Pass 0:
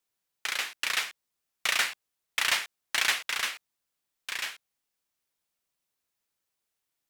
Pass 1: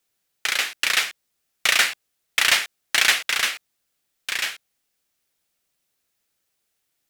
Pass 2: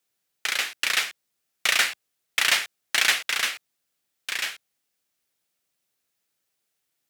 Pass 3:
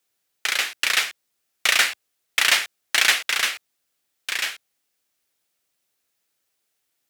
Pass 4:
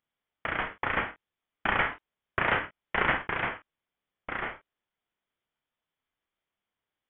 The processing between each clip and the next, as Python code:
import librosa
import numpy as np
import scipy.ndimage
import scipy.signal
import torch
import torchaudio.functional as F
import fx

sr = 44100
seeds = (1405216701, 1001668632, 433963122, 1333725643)

y1 = fx.peak_eq(x, sr, hz=1000.0, db=-5.5, octaves=0.45)
y1 = y1 * 10.0 ** (8.5 / 20.0)
y2 = scipy.signal.sosfilt(scipy.signal.butter(2, 83.0, 'highpass', fs=sr, output='sos'), y1)
y2 = y2 * 10.0 ** (-3.0 / 20.0)
y3 = fx.peak_eq(y2, sr, hz=160.0, db=-5.0, octaves=0.81)
y3 = y3 * 10.0 ** (3.0 / 20.0)
y4 = fx.room_early_taps(y3, sr, ms=(28, 48), db=(-8.5, -12.0))
y4 = fx.freq_invert(y4, sr, carrier_hz=3700)
y4 = y4 * 10.0 ** (-7.5 / 20.0)